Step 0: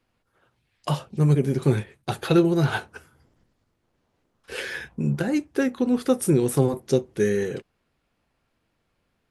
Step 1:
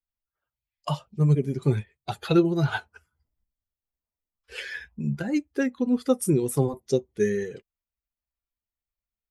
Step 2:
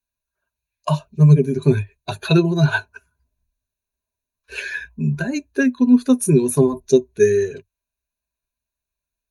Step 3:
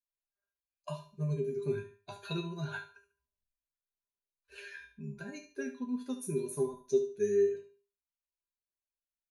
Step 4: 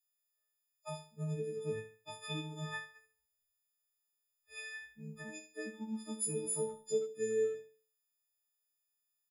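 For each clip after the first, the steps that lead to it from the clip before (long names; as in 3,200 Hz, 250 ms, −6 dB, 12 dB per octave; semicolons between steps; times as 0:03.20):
spectral dynamics exaggerated over time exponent 1.5
EQ curve with evenly spaced ripples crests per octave 1.5, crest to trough 14 dB; level +4.5 dB
tuned comb filter 200 Hz, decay 0.31 s, harmonics all, mix 90%; on a send: repeating echo 72 ms, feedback 28%, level −12 dB; on the sum: level −7 dB
every partial snapped to a pitch grid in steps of 6 semitones; far-end echo of a speakerphone 80 ms, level −19 dB; level −5 dB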